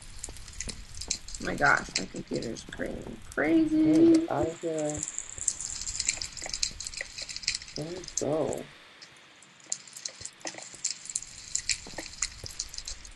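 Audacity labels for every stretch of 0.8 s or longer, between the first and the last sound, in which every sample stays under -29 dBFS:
8.610000	9.720000	silence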